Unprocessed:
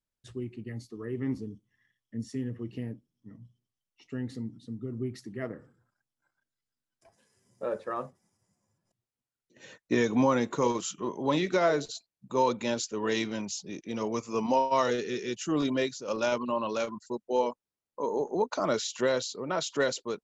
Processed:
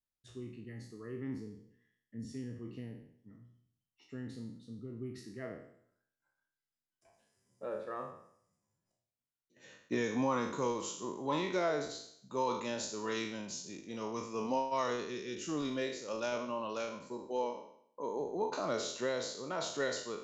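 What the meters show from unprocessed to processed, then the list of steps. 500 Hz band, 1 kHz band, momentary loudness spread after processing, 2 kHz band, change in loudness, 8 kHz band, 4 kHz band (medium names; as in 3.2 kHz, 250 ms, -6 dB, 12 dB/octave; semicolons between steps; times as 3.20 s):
-7.5 dB, -7.0 dB, 14 LU, -6.5 dB, -7.0 dB, no reading, -6.0 dB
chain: spectral sustain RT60 0.66 s; trim -9 dB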